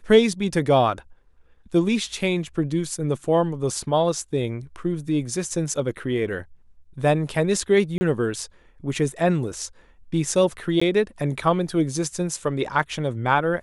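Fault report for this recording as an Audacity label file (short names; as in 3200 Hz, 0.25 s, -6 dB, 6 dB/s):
7.980000	8.010000	gap 30 ms
10.800000	10.810000	gap 15 ms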